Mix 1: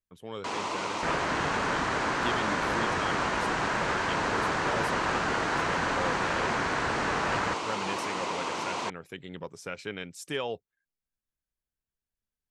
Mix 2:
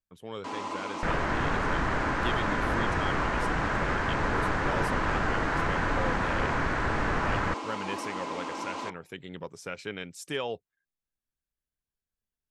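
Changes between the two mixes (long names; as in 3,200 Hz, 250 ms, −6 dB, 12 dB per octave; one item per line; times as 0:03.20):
first sound −8.5 dB
second sound: remove high-pass filter 200 Hz 6 dB per octave
reverb: on, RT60 0.35 s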